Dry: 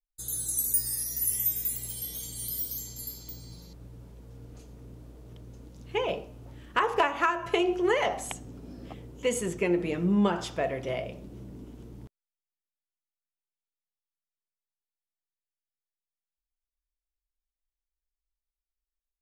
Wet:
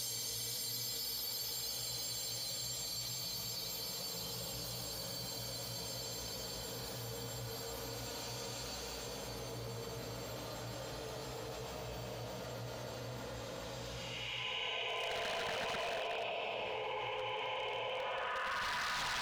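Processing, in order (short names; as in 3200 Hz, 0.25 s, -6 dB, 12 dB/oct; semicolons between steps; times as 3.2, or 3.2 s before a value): diffused feedback echo 0.476 s, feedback 52%, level -7.5 dB; LFO band-pass sine 5.9 Hz 490–4700 Hz; Paulstretch 4.9×, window 0.50 s, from 2.88; wavefolder -35.5 dBFS; limiter -40.5 dBFS, peak gain reduction 5 dB; bell 350 Hz -13 dB 1 oct; fast leveller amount 70%; gain +8 dB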